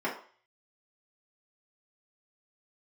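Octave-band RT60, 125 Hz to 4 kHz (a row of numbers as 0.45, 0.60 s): 0.30, 0.35, 0.45, 0.45, 0.45, 0.50 s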